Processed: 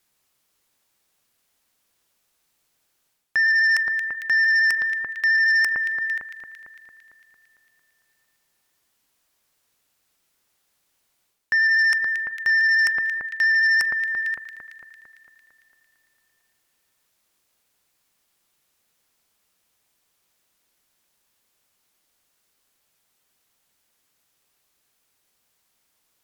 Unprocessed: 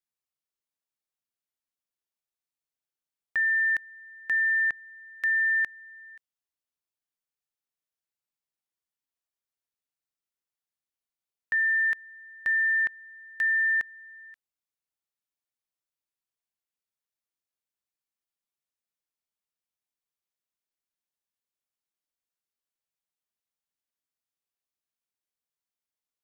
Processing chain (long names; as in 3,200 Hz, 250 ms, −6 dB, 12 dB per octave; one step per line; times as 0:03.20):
reversed playback
downward compressor 5 to 1, threshold −39 dBFS, peak gain reduction 14 dB
reversed playback
pitch vibrato 13 Hz 17 cents
delay that swaps between a low-pass and a high-pass 113 ms, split 1,800 Hz, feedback 78%, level −10 dB
sine wavefolder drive 13 dB, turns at −21 dBFS
level +5 dB